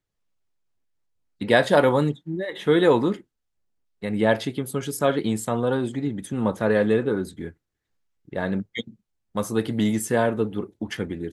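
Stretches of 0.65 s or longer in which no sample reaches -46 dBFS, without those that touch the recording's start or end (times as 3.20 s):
3.21–4.02 s
7.52–8.28 s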